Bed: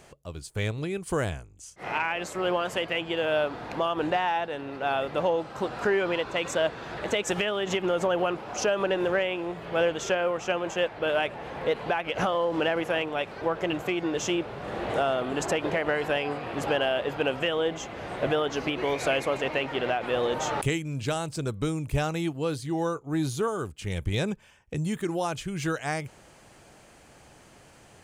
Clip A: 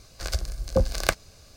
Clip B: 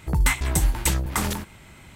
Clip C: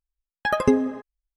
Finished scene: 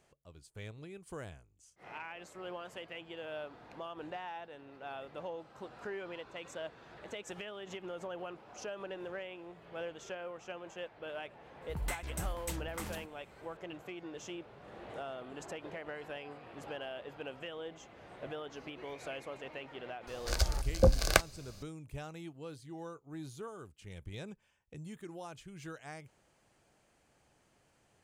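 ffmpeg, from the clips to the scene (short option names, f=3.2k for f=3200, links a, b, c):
-filter_complex "[0:a]volume=-17dB[a];[2:a]atrim=end=1.95,asetpts=PTS-STARTPTS,volume=-17.5dB,afade=t=in:d=0.004:c=hsin,afade=t=out:st=1.946:d=0.004:c=hsin,adelay=512442S[b];[1:a]atrim=end=1.56,asetpts=PTS-STARTPTS,volume=-2dB,afade=t=in:d=0.004:c=hsin,afade=t=out:st=1.556:d=0.004:c=hsin,adelay=20070[c];[a][b][c]amix=inputs=3:normalize=0"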